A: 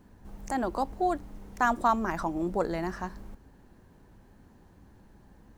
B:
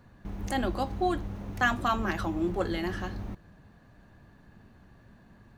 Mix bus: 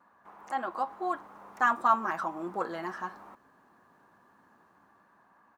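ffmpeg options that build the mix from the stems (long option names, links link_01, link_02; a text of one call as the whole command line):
ffmpeg -i stem1.wav -i stem2.wav -filter_complex "[0:a]dynaudnorm=framelen=300:gausssize=7:maxgain=7dB,volume=-13.5dB[link_01];[1:a]highpass=860,crystalizer=i=3.5:c=0,lowpass=frequency=1100:width_type=q:width=2.5,adelay=3.2,volume=-2dB[link_02];[link_01][link_02]amix=inputs=2:normalize=0,highpass=210" out.wav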